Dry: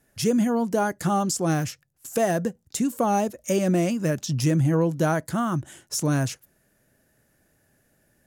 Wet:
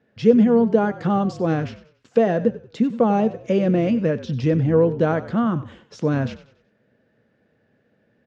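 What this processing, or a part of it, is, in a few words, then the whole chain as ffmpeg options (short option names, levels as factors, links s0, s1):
frequency-shifting delay pedal into a guitar cabinet: -filter_complex "[0:a]asplit=5[s0][s1][s2][s3][s4];[s1]adelay=94,afreqshift=-46,volume=0.178[s5];[s2]adelay=188,afreqshift=-92,volume=0.0692[s6];[s3]adelay=282,afreqshift=-138,volume=0.0269[s7];[s4]adelay=376,afreqshift=-184,volume=0.0106[s8];[s0][s5][s6][s7][s8]amix=inputs=5:normalize=0,highpass=96,equalizer=f=110:t=q:w=4:g=3,equalizer=f=220:t=q:w=4:g=8,equalizer=f=470:t=q:w=4:g=10,lowpass=f=3800:w=0.5412,lowpass=f=3800:w=1.3066"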